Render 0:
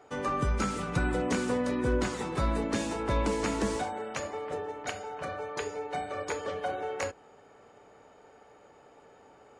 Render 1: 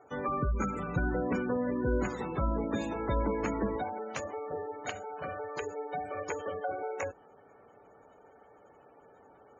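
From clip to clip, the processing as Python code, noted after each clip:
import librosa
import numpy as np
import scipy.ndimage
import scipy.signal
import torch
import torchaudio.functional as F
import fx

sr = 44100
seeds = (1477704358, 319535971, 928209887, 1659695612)

y = fx.spec_gate(x, sr, threshold_db=-20, keep='strong')
y = y * 10.0 ** (-1.5 / 20.0)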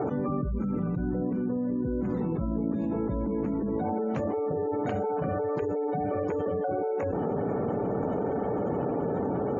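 y = fx.bandpass_q(x, sr, hz=180.0, q=1.2)
y = fx.env_flatten(y, sr, amount_pct=100)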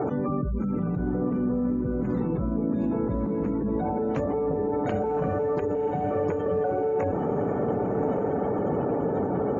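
y = fx.echo_diffused(x, sr, ms=1115, feedback_pct=40, wet_db=-8.5)
y = y * 10.0 ** (2.0 / 20.0)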